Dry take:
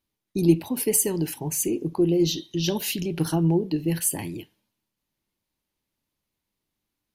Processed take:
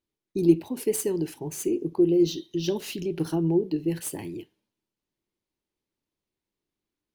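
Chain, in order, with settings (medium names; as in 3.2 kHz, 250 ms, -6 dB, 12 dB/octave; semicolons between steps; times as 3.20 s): median filter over 3 samples; peaking EQ 380 Hz +8.5 dB 0.76 oct; trim -6.5 dB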